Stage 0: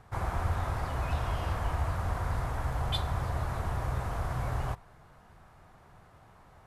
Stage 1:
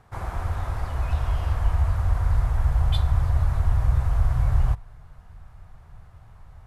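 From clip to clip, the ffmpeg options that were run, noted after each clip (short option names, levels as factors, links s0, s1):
-af "asubboost=boost=8.5:cutoff=96"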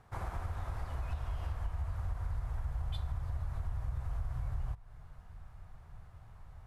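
-af "acompressor=threshold=0.0355:ratio=4,volume=0.531"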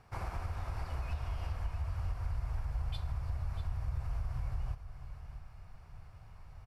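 -af "superequalizer=12b=1.78:14b=2,aecho=1:1:646:0.266"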